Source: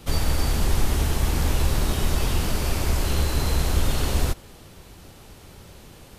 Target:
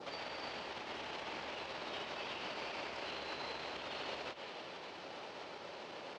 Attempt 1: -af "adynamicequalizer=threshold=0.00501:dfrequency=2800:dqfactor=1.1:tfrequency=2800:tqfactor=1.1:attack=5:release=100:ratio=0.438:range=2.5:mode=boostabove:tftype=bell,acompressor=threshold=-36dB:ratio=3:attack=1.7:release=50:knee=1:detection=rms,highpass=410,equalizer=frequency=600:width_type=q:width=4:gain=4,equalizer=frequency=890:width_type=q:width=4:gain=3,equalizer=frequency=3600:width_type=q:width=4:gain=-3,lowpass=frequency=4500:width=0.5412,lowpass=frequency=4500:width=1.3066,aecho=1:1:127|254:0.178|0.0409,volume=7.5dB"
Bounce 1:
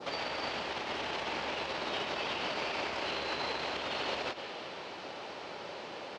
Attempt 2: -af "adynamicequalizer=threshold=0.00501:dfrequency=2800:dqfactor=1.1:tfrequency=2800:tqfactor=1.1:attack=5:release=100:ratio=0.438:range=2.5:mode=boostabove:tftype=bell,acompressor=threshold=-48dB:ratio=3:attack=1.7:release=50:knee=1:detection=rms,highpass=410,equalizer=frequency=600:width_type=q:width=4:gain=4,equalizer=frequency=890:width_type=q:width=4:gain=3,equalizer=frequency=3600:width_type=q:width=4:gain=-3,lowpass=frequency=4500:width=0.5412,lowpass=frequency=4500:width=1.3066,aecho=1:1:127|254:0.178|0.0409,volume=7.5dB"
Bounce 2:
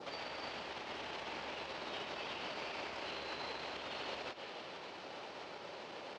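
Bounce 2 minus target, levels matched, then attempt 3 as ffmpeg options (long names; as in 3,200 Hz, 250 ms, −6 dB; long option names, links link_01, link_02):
echo 68 ms early
-af "adynamicequalizer=threshold=0.00501:dfrequency=2800:dqfactor=1.1:tfrequency=2800:tqfactor=1.1:attack=5:release=100:ratio=0.438:range=2.5:mode=boostabove:tftype=bell,acompressor=threshold=-48dB:ratio=3:attack=1.7:release=50:knee=1:detection=rms,highpass=410,equalizer=frequency=600:width_type=q:width=4:gain=4,equalizer=frequency=890:width_type=q:width=4:gain=3,equalizer=frequency=3600:width_type=q:width=4:gain=-3,lowpass=frequency=4500:width=0.5412,lowpass=frequency=4500:width=1.3066,aecho=1:1:195|390:0.178|0.0409,volume=7.5dB"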